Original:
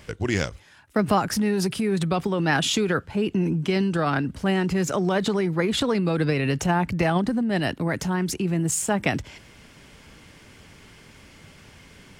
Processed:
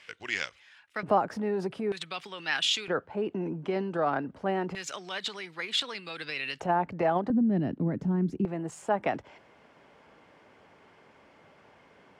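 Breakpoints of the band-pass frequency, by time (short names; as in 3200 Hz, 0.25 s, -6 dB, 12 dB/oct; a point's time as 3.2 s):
band-pass, Q 1.2
2500 Hz
from 1.03 s 620 Hz
from 1.92 s 3100 Hz
from 2.88 s 680 Hz
from 4.75 s 3300 Hz
from 6.6 s 660 Hz
from 7.3 s 230 Hz
from 8.45 s 730 Hz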